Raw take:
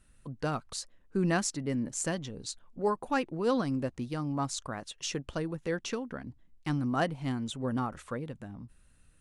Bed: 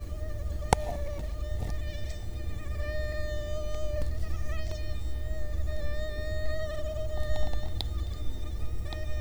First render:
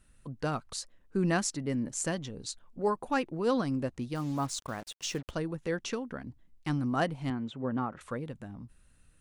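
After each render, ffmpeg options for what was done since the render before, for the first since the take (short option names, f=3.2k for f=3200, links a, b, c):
-filter_complex "[0:a]asettb=1/sr,asplit=3[a][b][c];[a]atrim=end=4.154[d];[b]atrim=start=4.15:end=5.31,asetpts=PTS-STARTPTS,afade=t=in:d=0.004:c=qsin,afade=t=out:st=1.156:d=0.004:c=qsin,acrusher=bits=7:mix=0:aa=0.5[e];[c]atrim=start=5.306[f];[d][e]acrossfade=d=0.004:c1=hsin:c2=qsin[g];[g][f]acrossfade=d=0.004:c1=qsin:c2=hsin,asettb=1/sr,asplit=3[h][i][j];[h]atrim=end=7.304[k];[i]atrim=start=7.3:end=8.01,asetpts=PTS-STARTPTS,afade=t=in:d=0.004:c=qsin,afade=t=out:st=0.706:d=0.004:c=qsin,highpass=120,lowpass=2.5k[l];[j]atrim=start=8.006[m];[k][l]acrossfade=d=0.004:c1=hsin:c2=qsin[n];[n][m]acrossfade=d=0.004:c1=qsin:c2=hsin"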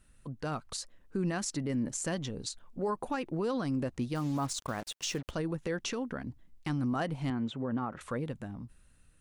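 -af "alimiter=level_in=3.5dB:limit=-24dB:level=0:latency=1:release=77,volume=-3.5dB,dynaudnorm=f=210:g=7:m=3dB"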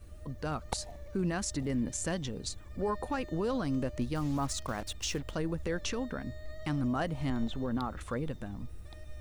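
-filter_complex "[1:a]volume=-13dB[a];[0:a][a]amix=inputs=2:normalize=0"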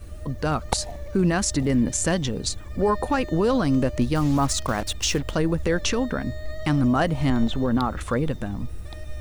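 -af "volume=11dB"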